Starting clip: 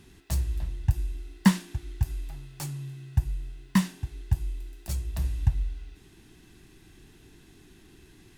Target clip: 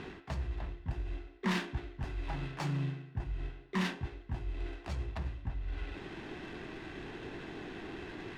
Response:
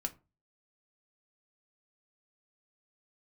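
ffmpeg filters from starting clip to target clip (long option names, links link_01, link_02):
-filter_complex "[0:a]areverse,acompressor=threshold=-37dB:ratio=12,areverse,asplit=3[link_01][link_02][link_03];[link_02]asetrate=52444,aresample=44100,atempo=0.840896,volume=-10dB[link_04];[link_03]asetrate=88200,aresample=44100,atempo=0.5,volume=-15dB[link_05];[link_01][link_04][link_05]amix=inputs=3:normalize=0,asplit=2[link_06][link_07];[link_07]highpass=frequency=720:poles=1,volume=18dB,asoftclip=type=tanh:threshold=-28dB[link_08];[link_06][link_08]amix=inputs=2:normalize=0,lowpass=frequency=4800:poles=1,volume=-6dB,adynamicsmooth=sensitivity=8:basefreq=1800,volume=6.5dB"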